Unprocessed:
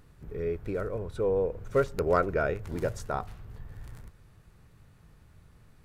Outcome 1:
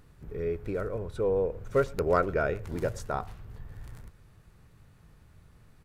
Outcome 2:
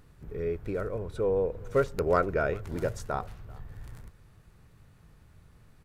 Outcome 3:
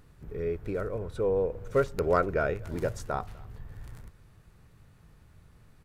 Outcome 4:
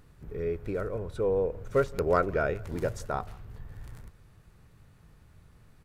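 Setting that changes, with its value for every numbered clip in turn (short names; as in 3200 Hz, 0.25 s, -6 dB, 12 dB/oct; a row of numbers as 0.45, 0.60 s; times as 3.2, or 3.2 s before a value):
speakerphone echo, time: 0.11, 0.39, 0.25, 0.17 s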